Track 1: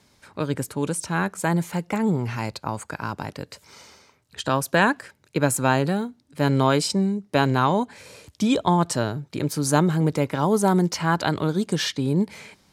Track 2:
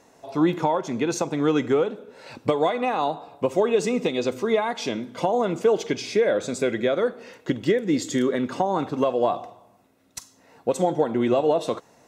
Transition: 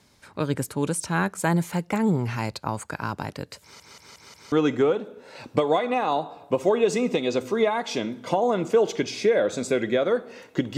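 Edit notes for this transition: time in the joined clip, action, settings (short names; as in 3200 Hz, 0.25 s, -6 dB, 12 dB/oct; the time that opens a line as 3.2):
track 1
3.62 stutter in place 0.18 s, 5 plays
4.52 switch to track 2 from 1.43 s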